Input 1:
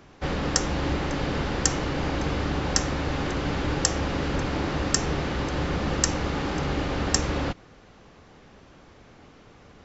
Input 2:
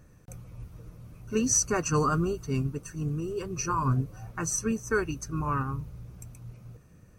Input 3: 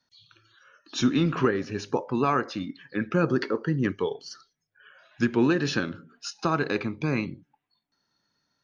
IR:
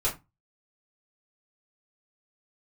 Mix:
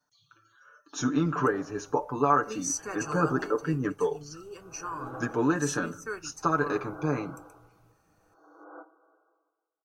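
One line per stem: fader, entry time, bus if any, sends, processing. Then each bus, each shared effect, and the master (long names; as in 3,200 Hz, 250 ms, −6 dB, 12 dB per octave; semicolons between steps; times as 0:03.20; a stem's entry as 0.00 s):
−10.0 dB, 1.30 s, send −13 dB, brick-wall band-pass 280–1,600 Hz; comb filter 6.2 ms, depth 61%; tremolo with a sine in dB 0.52 Hz, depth 30 dB
−7.5 dB, 1.15 s, send −19.5 dB, no processing
+1.5 dB, 0.00 s, no send, flat-topped bell 3,100 Hz −15 dB; comb filter 6.8 ms, depth 84%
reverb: on, RT60 0.20 s, pre-delay 3 ms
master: low-shelf EQ 390 Hz −11 dB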